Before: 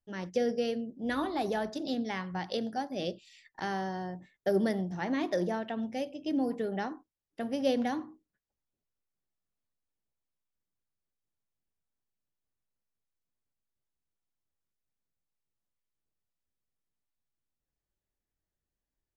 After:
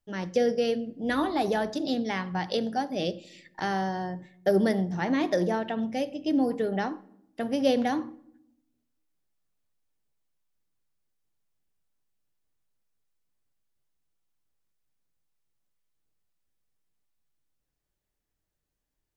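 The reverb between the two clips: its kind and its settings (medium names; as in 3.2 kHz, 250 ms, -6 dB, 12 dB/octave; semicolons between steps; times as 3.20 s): simulated room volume 2100 m³, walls furnished, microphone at 0.45 m; trim +5 dB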